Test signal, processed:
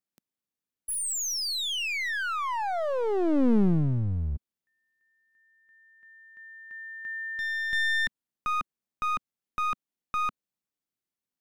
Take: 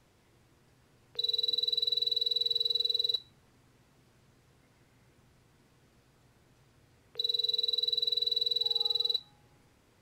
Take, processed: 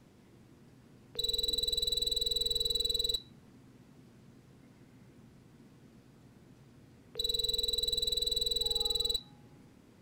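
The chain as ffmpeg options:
-af "equalizer=f=220:w=0.83:g=12,aeval=exprs='clip(val(0),-1,0.0266)':c=same"

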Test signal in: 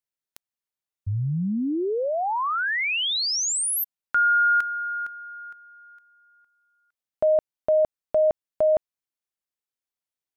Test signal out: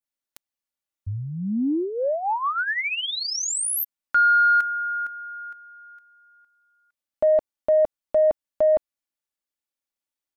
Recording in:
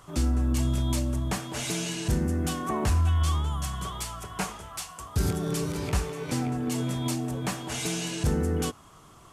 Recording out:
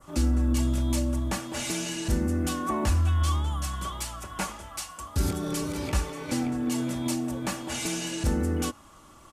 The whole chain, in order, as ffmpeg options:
-af "aecho=1:1:3.5:0.51,acontrast=28,adynamicequalizer=threshold=0.0316:dfrequency=3700:dqfactor=0.81:tfrequency=3700:tqfactor=0.81:attack=5:release=100:ratio=0.375:range=2.5:mode=cutabove:tftype=bell,volume=-5.5dB"

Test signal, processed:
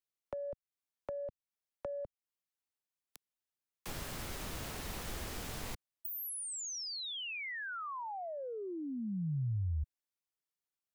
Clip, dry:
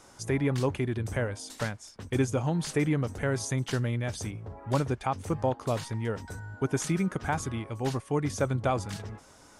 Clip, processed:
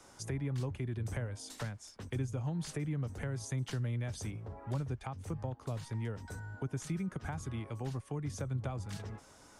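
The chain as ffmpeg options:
-filter_complex "[0:a]acrossover=split=160[a][b];[b]acompressor=threshold=-37dB:ratio=6[c];[a][c]amix=inputs=2:normalize=0,acrossover=split=290|940[d][e][f];[e]asoftclip=type=tanh:threshold=-27dB[g];[d][g][f]amix=inputs=3:normalize=0,volume=-3.5dB"

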